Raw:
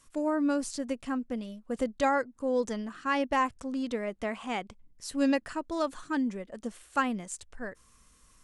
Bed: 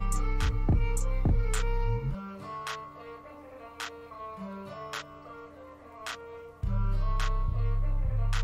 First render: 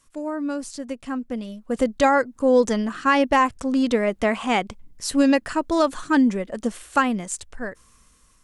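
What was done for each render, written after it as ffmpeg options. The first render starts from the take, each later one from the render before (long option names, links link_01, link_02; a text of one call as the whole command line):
ffmpeg -i in.wav -af "dynaudnorm=framelen=490:gausssize=7:maxgain=14dB,alimiter=limit=-7.5dB:level=0:latency=1:release=361" out.wav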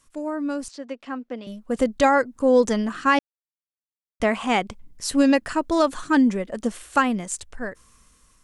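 ffmpeg -i in.wav -filter_complex "[0:a]asettb=1/sr,asplit=3[link_01][link_02][link_03];[link_01]atrim=end=0.684[link_04];[link_02]atrim=start=0.68:end=1.47,asetpts=PTS-STARTPTS,afade=type=in:duration=0.004:curve=qsin,afade=type=out:start_time=0.786:duration=0.004:curve=qsin,acrossover=split=250 5500:gain=0.0631 1 0.0708[link_05][link_06][link_07];[link_05][link_06][link_07]amix=inputs=3:normalize=0[link_08];[link_03]atrim=start=1.466[link_09];[link_04][link_08]acrossfade=duration=0.004:curve1=hsin:curve2=qsin[link_10];[link_10][link_09]acrossfade=duration=0.004:curve1=qsin:curve2=hsin,asplit=3[link_11][link_12][link_13];[link_11]atrim=end=3.19,asetpts=PTS-STARTPTS,afade=type=out:start_time=3.186:duration=0.004:curve=hsin[link_14];[link_12]atrim=start=3.19:end=4.2,asetpts=PTS-STARTPTS,volume=0[link_15];[link_13]atrim=start=4.2,asetpts=PTS-STARTPTS,afade=type=in:duration=0.004:curve=hsin[link_16];[link_14][link_15][link_16]concat=n=3:v=0:a=1" out.wav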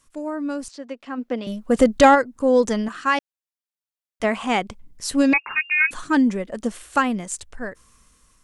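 ffmpeg -i in.wav -filter_complex "[0:a]asplit=3[link_01][link_02][link_03];[link_01]afade=type=out:start_time=1.17:duration=0.02[link_04];[link_02]acontrast=78,afade=type=in:start_time=1.17:duration=0.02,afade=type=out:start_time=2.14:duration=0.02[link_05];[link_03]afade=type=in:start_time=2.14:duration=0.02[link_06];[link_04][link_05][link_06]amix=inputs=3:normalize=0,asettb=1/sr,asplit=3[link_07][link_08][link_09];[link_07]atrim=end=2.884[link_10];[link_08]atrim=start=2.88:end=4.24,asetpts=PTS-STARTPTS,afade=type=in:duration=0.004:curve=qsin,afade=type=out:start_time=1.356:duration=0.004:curve=qsin,lowshelf=frequency=370:gain=-10[link_11];[link_09]atrim=start=4.236[link_12];[link_10][link_11]acrossfade=duration=0.004:curve1=hsin:curve2=qsin[link_13];[link_13][link_12]acrossfade=duration=0.004:curve1=qsin:curve2=hsin,asettb=1/sr,asplit=3[link_14][link_15][link_16];[link_14]atrim=end=5.334[link_17];[link_15]atrim=start=5.33:end=5.91,asetpts=PTS-STARTPTS,afade=type=in:duration=0.004:curve=qsin,afade=type=out:start_time=0.576:duration=0.004:curve=qsin,lowpass=frequency=2400:width_type=q:width=0.5098,lowpass=frequency=2400:width_type=q:width=0.6013,lowpass=frequency=2400:width_type=q:width=0.9,lowpass=frequency=2400:width_type=q:width=2.563,afreqshift=-2800[link_18];[link_16]atrim=start=5.906[link_19];[link_17][link_18]acrossfade=duration=0.004:curve1=hsin:curve2=qsin[link_20];[link_20][link_19]acrossfade=duration=0.004:curve1=qsin:curve2=hsin" out.wav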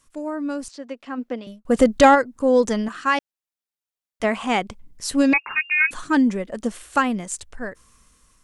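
ffmpeg -i in.wav -filter_complex "[0:a]asplit=2[link_01][link_02];[link_01]atrim=end=1.65,asetpts=PTS-STARTPTS,afade=type=out:start_time=1.21:duration=0.44[link_03];[link_02]atrim=start=1.65,asetpts=PTS-STARTPTS,afade=type=in:duration=0.004:curve=hsin[link_04];[link_03][link_04]concat=n=2:v=0:a=1" out.wav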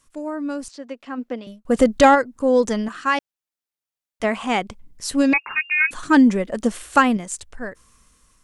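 ffmpeg -i in.wav -filter_complex "[0:a]asplit=3[link_01][link_02][link_03];[link_01]atrim=end=6.032[link_04];[link_02]atrim=start=6.028:end=7.172,asetpts=PTS-STARTPTS,volume=4.5dB[link_05];[link_03]atrim=start=7.168[link_06];[link_04][link_05]acrossfade=duration=0.004:curve1=hsin:curve2=hsin[link_07];[link_07][link_06]acrossfade=duration=0.004:curve1=hsin:curve2=hsin" out.wav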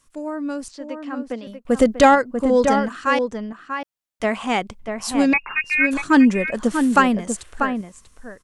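ffmpeg -i in.wav -filter_complex "[0:a]asplit=2[link_01][link_02];[link_02]adelay=641.4,volume=-6dB,highshelf=frequency=4000:gain=-14.4[link_03];[link_01][link_03]amix=inputs=2:normalize=0" out.wav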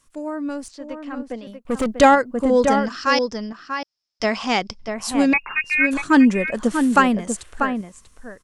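ffmpeg -i in.wav -filter_complex "[0:a]asettb=1/sr,asplit=3[link_01][link_02][link_03];[link_01]atrim=end=0.494[link_04];[link_02]atrim=start=0.49:end=1.96,asetpts=PTS-STARTPTS,afade=type=in:duration=0.004:curve=qsin,afade=type=out:start_time=1.466:duration=0.004:curve=qsin,aeval=exprs='(tanh(7.08*val(0)+0.4)-tanh(0.4))/7.08':channel_layout=same[link_05];[link_03]atrim=start=1.956[link_06];[link_04][link_05]acrossfade=duration=0.004:curve1=hsin:curve2=qsin[link_07];[link_07][link_06]acrossfade=duration=0.004:curve1=qsin:curve2=hsin,asettb=1/sr,asplit=3[link_08][link_09][link_10];[link_08]atrim=end=2.854[link_11];[link_09]atrim=start=2.85:end=4.94,asetpts=PTS-STARTPTS,afade=type=in:duration=0.004:curve=qsin,afade=type=out:start_time=2.086:duration=0.004:curve=qsin,lowpass=frequency=5200:width_type=q:width=15[link_12];[link_10]atrim=start=4.936[link_13];[link_11][link_12]acrossfade=duration=0.004:curve1=hsin:curve2=qsin[link_14];[link_14][link_13]acrossfade=duration=0.004:curve1=qsin:curve2=hsin" out.wav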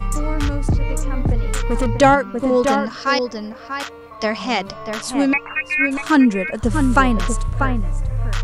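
ffmpeg -i in.wav -i bed.wav -filter_complex "[1:a]volume=7dB[link_01];[0:a][link_01]amix=inputs=2:normalize=0" out.wav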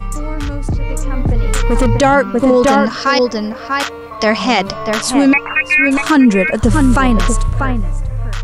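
ffmpeg -i in.wav -af "alimiter=limit=-12dB:level=0:latency=1:release=14,dynaudnorm=framelen=310:gausssize=9:maxgain=11dB" out.wav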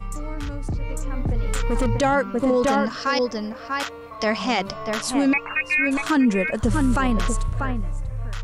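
ffmpeg -i in.wav -af "volume=-9dB" out.wav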